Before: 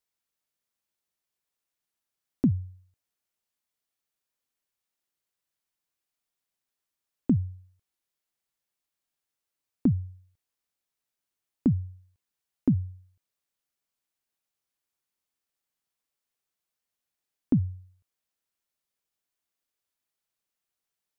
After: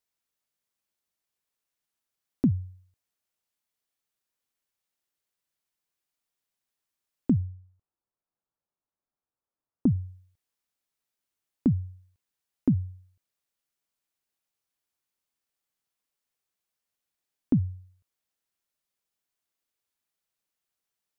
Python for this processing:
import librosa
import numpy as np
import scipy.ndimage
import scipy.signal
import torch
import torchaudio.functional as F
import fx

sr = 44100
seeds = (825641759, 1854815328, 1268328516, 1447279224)

y = fx.lowpass(x, sr, hz=1300.0, slope=24, at=(7.41, 9.96))